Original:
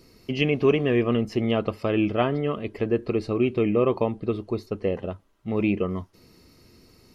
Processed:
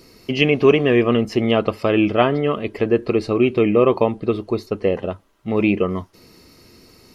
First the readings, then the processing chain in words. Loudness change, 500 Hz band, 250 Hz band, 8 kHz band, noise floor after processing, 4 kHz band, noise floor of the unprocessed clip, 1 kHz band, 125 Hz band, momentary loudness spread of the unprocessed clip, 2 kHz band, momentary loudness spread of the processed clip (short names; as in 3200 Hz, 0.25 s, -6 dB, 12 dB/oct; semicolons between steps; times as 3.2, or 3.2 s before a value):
+6.5 dB, +7.0 dB, +5.5 dB, n/a, -51 dBFS, +8.0 dB, -56 dBFS, +7.5 dB, +3.5 dB, 9 LU, +8.0 dB, 9 LU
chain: low shelf 220 Hz -6 dB; gain +8 dB